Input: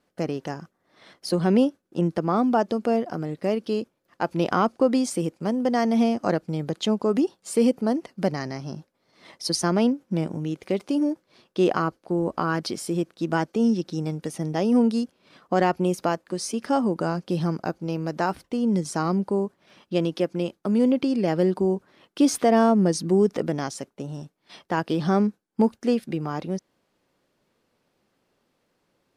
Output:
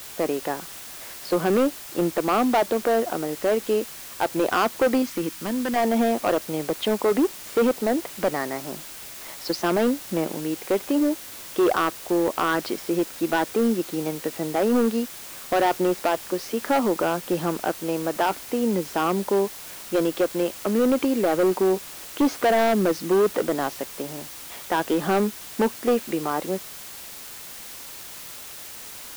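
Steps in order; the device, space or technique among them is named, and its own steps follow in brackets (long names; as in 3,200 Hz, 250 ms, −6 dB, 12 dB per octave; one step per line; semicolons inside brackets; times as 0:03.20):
aircraft radio (band-pass filter 350–2,500 Hz; hard clipping −22 dBFS, distortion −9 dB; white noise bed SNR 15 dB)
0:05.02–0:05.76: flat-topped bell 570 Hz −9 dB 1.3 octaves
level +6.5 dB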